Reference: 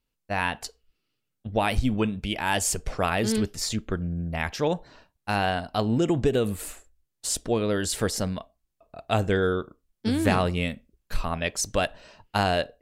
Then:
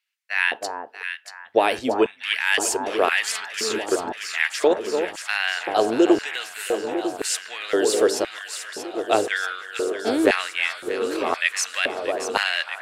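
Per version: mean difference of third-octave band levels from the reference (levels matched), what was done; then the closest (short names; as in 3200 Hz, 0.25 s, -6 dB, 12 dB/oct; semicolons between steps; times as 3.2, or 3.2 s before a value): 12.5 dB: bell 180 Hz -11 dB 0.61 oct; echo with dull and thin repeats by turns 0.317 s, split 1300 Hz, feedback 85%, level -7 dB; LFO high-pass square 0.97 Hz 380–1900 Hz; high shelf 12000 Hz -8 dB; gain +3.5 dB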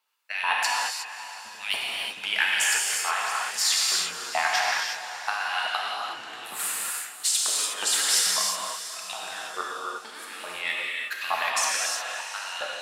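17.0 dB: negative-ratio compressor -29 dBFS, ratio -0.5; LFO high-pass saw up 2.3 Hz 850–3000 Hz; on a send: diffused feedback echo 0.562 s, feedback 44%, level -13 dB; on the sum: non-linear reverb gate 0.39 s flat, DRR -4 dB; gain +1 dB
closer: first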